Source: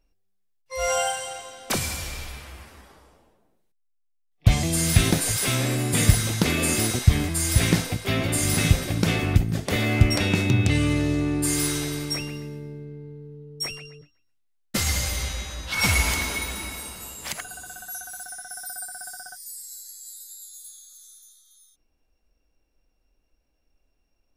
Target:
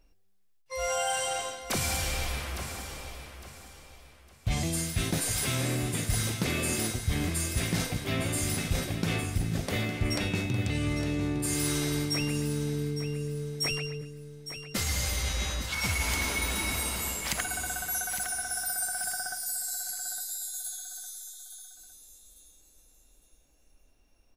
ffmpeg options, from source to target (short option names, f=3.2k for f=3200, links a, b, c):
-af "areverse,acompressor=threshold=-33dB:ratio=6,areverse,aecho=1:1:858|1716|2574:0.299|0.0925|0.0287,volume=5.5dB"